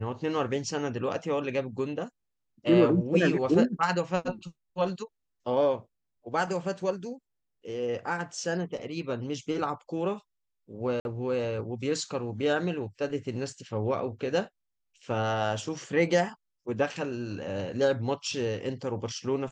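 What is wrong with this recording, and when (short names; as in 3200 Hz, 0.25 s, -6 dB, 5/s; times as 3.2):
11–11.05 gap 51 ms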